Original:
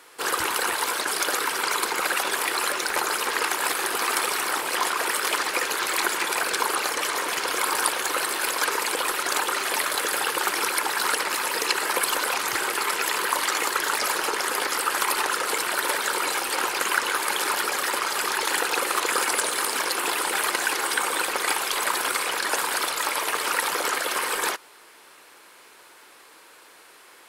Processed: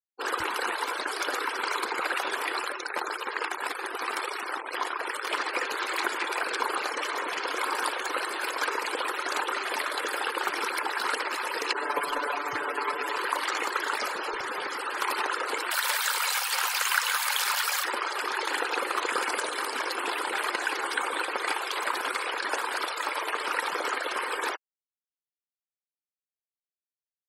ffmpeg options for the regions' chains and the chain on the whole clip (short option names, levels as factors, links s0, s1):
-filter_complex "[0:a]asettb=1/sr,asplit=3[s0][s1][s2];[s0]atrim=end=2.614[s3];[s1]atrim=start=2.61:end=5.3,asetpts=PTS-STARTPTS,afade=t=in:d=0.004:c=qsin,afade=t=out:st=2.686:d=0.004:c=qsin,bandreject=f=52.9:t=h:w=4,bandreject=f=105.8:t=h:w=4,bandreject=f=158.7:t=h:w=4,bandreject=f=211.6:t=h:w=4,bandreject=f=264.5:t=h:w=4,aeval=exprs='sgn(val(0))*max(abs(val(0))-0.0178,0)':c=same[s4];[s2]atrim=start=5.296[s5];[s3][s4]acrossfade=d=0.004:c1=hsin:c2=qsin[s6];[s6][s5]acrossfade=d=0.004:c1=qsin:c2=hsin,asettb=1/sr,asplit=3[s7][s8][s9];[s7]atrim=end=11.734[s10];[s8]atrim=start=11.73:end=13.16,asetpts=PTS-STARTPTS,afade=t=in:d=0.004:c=qsin,afade=t=out:st=1.426:d=0.004:c=qsin,aecho=1:1:6.9:0.8,atrim=end_sample=63063,adynamicequalizer=threshold=0.0141:dfrequency=1600:dqfactor=0.7:tfrequency=1600:tqfactor=0.7:attack=5:release=100:ratio=0.375:range=3:mode=cutabove:tftype=highshelf[s11];[s9]atrim=start=13.156[s12];[s10][s11]acrossfade=d=0.004:c1=hsin:c2=qsin[s13];[s13][s12]acrossfade=d=0.004:c1=qsin:c2=hsin,asettb=1/sr,asplit=3[s14][s15][s16];[s14]atrim=end=14.084[s17];[s15]atrim=start=14.08:end=14.99,asetpts=PTS-STARTPTS,afade=t=in:d=0.004:c=qsin,afade=t=out:st=0.906:d=0.004:c=qsin,lowshelf=f=100:g=8,asoftclip=type=hard:threshold=0.0631[s18];[s16]atrim=start=14.986[s19];[s17][s18]acrossfade=d=0.004:c1=hsin:c2=qsin[s20];[s20][s19]acrossfade=d=0.004:c1=qsin:c2=hsin,asettb=1/sr,asplit=3[s21][s22][s23];[s21]atrim=end=15.714[s24];[s22]atrim=start=15.71:end=17.84,asetpts=PTS-STARTPTS,afade=t=in:d=0.004:c=qsin,afade=t=out:st=2.126:d=0.004:c=qsin,acrossover=split=7300[s25][s26];[s26]acompressor=threshold=0.0158:ratio=4:attack=1:release=60[s27];[s25][s27]amix=inputs=2:normalize=0,highpass=600,aemphasis=mode=production:type=riaa[s28];[s23]atrim=start=17.836[s29];[s24][s28]acrossfade=d=0.004:c1=hsin:c2=qsin[s30];[s30][s29]acrossfade=d=0.004:c1=qsin:c2=hsin,afftfilt=real='re*gte(hypot(re,im),0.0316)':imag='im*gte(hypot(re,im),0.0316)':win_size=1024:overlap=0.75,equalizer=f=11000:w=0.56:g=-10,volume=0.708"